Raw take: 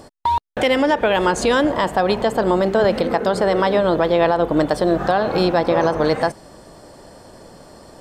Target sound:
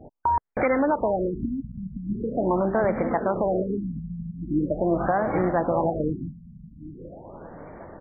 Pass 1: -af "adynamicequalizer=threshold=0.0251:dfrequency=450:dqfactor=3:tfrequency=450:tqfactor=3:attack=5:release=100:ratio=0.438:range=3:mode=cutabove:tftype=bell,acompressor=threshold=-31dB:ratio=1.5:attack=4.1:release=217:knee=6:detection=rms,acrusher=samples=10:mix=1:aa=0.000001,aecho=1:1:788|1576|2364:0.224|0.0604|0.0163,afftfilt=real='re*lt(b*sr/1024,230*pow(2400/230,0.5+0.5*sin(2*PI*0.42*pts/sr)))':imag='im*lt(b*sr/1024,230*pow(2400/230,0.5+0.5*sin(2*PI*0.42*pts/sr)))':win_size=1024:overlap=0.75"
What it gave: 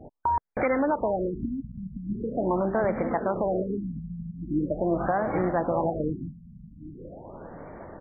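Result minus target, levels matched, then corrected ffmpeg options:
compressor: peak gain reduction +2.5 dB
-af "adynamicequalizer=threshold=0.0251:dfrequency=450:dqfactor=3:tfrequency=450:tqfactor=3:attack=5:release=100:ratio=0.438:range=3:mode=cutabove:tftype=bell,acompressor=threshold=-23.5dB:ratio=1.5:attack=4.1:release=217:knee=6:detection=rms,acrusher=samples=10:mix=1:aa=0.000001,aecho=1:1:788|1576|2364:0.224|0.0604|0.0163,afftfilt=real='re*lt(b*sr/1024,230*pow(2400/230,0.5+0.5*sin(2*PI*0.42*pts/sr)))':imag='im*lt(b*sr/1024,230*pow(2400/230,0.5+0.5*sin(2*PI*0.42*pts/sr)))':win_size=1024:overlap=0.75"

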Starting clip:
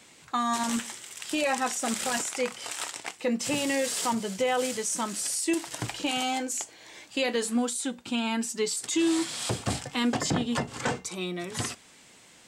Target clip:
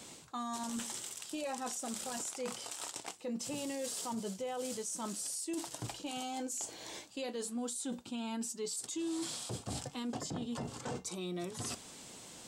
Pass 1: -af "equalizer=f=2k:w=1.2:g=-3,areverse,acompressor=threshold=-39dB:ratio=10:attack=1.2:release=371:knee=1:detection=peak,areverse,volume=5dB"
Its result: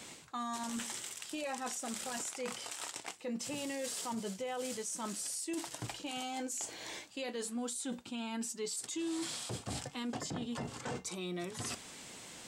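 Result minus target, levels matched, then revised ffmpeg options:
2000 Hz band +4.0 dB
-af "equalizer=f=2k:w=1.2:g=-9.5,areverse,acompressor=threshold=-39dB:ratio=10:attack=1.2:release=371:knee=1:detection=peak,areverse,volume=5dB"

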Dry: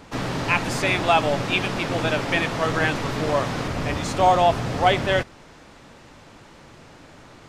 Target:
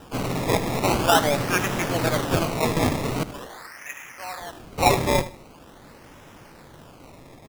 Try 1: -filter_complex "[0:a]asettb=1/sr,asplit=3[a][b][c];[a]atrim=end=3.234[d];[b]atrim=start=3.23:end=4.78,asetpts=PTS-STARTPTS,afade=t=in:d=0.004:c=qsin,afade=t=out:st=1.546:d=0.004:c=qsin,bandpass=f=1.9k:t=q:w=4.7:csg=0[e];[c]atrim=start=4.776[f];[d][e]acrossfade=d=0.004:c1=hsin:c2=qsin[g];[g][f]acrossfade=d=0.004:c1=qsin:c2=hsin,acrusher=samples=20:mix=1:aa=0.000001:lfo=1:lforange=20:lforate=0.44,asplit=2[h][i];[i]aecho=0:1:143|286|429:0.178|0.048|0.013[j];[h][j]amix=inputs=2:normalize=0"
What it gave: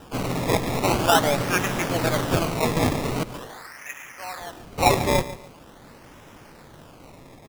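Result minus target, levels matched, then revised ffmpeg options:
echo 65 ms late
-filter_complex "[0:a]asettb=1/sr,asplit=3[a][b][c];[a]atrim=end=3.234[d];[b]atrim=start=3.23:end=4.78,asetpts=PTS-STARTPTS,afade=t=in:d=0.004:c=qsin,afade=t=out:st=1.546:d=0.004:c=qsin,bandpass=f=1.9k:t=q:w=4.7:csg=0[e];[c]atrim=start=4.776[f];[d][e]acrossfade=d=0.004:c1=hsin:c2=qsin[g];[g][f]acrossfade=d=0.004:c1=qsin:c2=hsin,acrusher=samples=20:mix=1:aa=0.000001:lfo=1:lforange=20:lforate=0.44,asplit=2[h][i];[i]aecho=0:1:78|156|234:0.178|0.048|0.013[j];[h][j]amix=inputs=2:normalize=0"

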